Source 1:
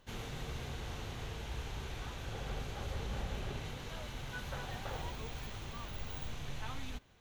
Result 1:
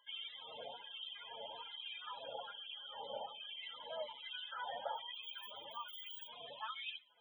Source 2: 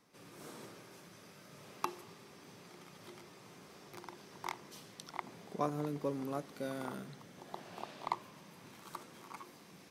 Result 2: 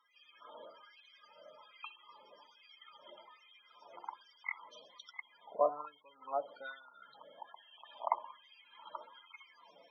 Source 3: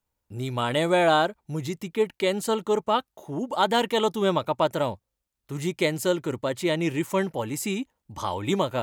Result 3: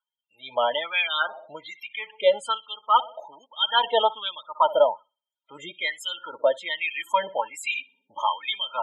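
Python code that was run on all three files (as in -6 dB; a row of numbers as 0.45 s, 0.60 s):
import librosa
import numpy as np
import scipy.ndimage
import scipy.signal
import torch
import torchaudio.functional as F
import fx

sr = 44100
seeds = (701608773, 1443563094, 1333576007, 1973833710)

p1 = fx.highpass(x, sr, hz=41.0, slope=6)
p2 = fx.peak_eq(p1, sr, hz=3100.0, db=11.0, octaves=0.25)
p3 = fx.notch(p2, sr, hz=2900.0, q=14.0)
p4 = fx.notch_comb(p3, sr, f0_hz=380.0)
p5 = p4 + fx.echo_bbd(p4, sr, ms=62, stages=2048, feedback_pct=45, wet_db=-19.0, dry=0)
p6 = fx.spec_topn(p5, sr, count=32)
y = fx.filter_lfo_highpass(p6, sr, shape='sine', hz=1.2, low_hz=610.0, high_hz=2500.0, q=3.7)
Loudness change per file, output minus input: -3.0 LU, +2.0 LU, +1.0 LU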